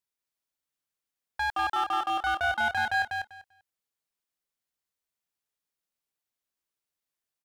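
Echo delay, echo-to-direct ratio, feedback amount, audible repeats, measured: 0.196 s, -4.0 dB, 17%, 3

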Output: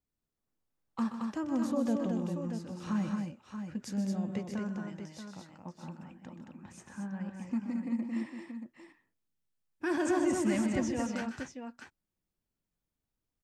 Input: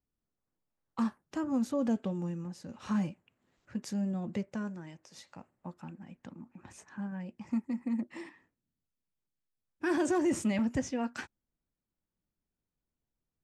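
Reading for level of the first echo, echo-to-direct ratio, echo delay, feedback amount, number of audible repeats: -11.0 dB, -2.0 dB, 0.127 s, no steady repeat, 3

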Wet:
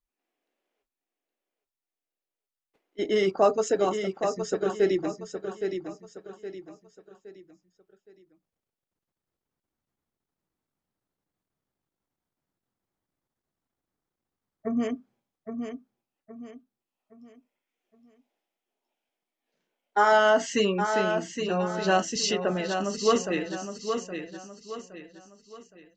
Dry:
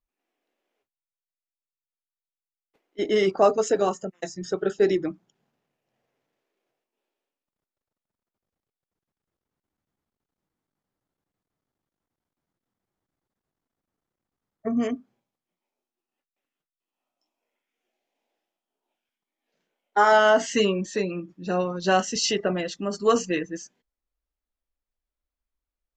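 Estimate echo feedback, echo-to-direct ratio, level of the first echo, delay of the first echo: 37%, -6.5 dB, -7.0 dB, 0.817 s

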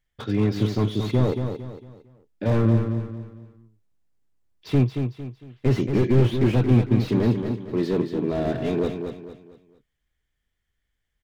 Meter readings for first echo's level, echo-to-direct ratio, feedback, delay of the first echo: -7.0 dB, -6.5 dB, 36%, 0.227 s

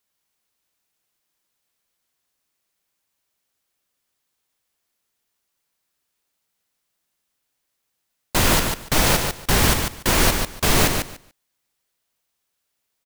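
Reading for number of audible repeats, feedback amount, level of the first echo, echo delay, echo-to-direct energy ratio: 2, 17%, -5.5 dB, 0.145 s, -5.5 dB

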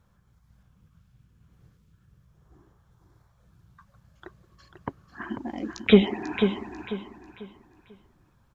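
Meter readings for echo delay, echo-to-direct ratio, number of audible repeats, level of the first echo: 0.493 s, -7.0 dB, 3, -7.5 dB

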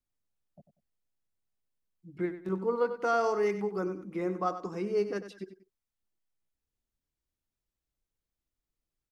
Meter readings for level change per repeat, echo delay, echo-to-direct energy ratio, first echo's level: -11.0 dB, 95 ms, -11.0 dB, -11.5 dB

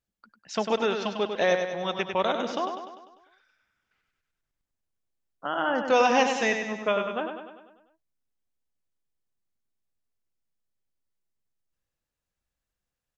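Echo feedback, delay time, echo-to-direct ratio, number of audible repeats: 55%, 99 ms, -5.0 dB, 6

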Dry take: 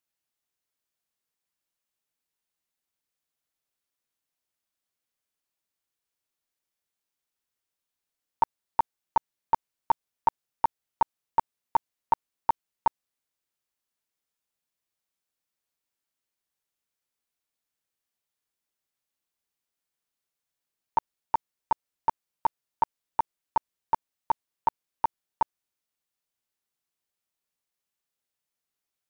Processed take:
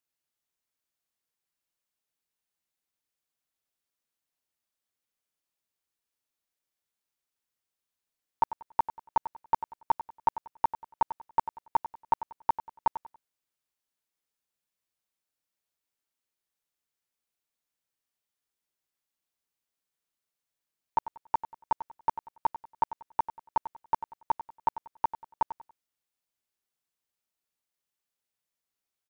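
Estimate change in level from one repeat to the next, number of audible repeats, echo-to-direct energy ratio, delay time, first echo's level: -10.5 dB, 3, -12.0 dB, 94 ms, -12.5 dB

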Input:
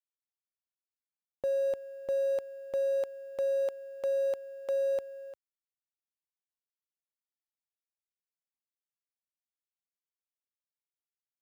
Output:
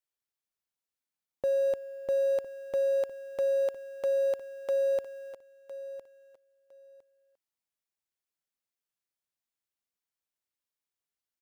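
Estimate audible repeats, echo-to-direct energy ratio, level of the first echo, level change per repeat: 2, -14.0 dB, -14.0 dB, -14.5 dB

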